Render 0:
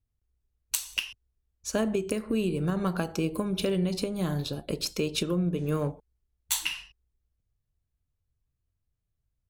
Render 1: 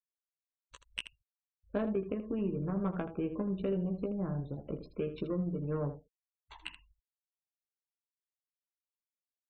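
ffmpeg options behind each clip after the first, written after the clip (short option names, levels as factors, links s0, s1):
-af "adynamicsmooth=sensitivity=1:basefreq=840,afftfilt=real='re*gte(hypot(re,im),0.00562)':imag='im*gte(hypot(re,im),0.00562)':win_size=1024:overlap=0.75,aecho=1:1:15|79:0.501|0.266,volume=0.473"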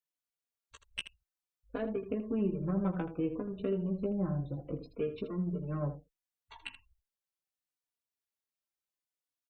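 -filter_complex "[0:a]asplit=2[s0][s1];[s1]adelay=3.5,afreqshift=-0.66[s2];[s0][s2]amix=inputs=2:normalize=1,volume=1.41"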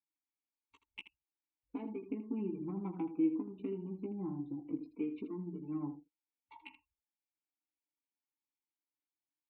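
-filter_complex "[0:a]asplit=3[s0][s1][s2];[s0]bandpass=f=300:t=q:w=8,volume=1[s3];[s1]bandpass=f=870:t=q:w=8,volume=0.501[s4];[s2]bandpass=f=2240:t=q:w=8,volume=0.355[s5];[s3][s4][s5]amix=inputs=3:normalize=0,volume=2.37"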